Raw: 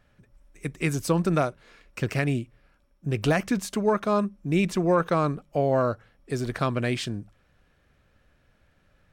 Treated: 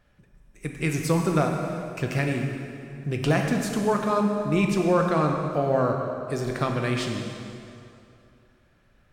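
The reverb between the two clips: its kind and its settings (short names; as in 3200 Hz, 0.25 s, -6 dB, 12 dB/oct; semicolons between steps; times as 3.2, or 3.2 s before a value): plate-style reverb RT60 2.6 s, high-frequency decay 0.8×, DRR 1.5 dB; gain -1 dB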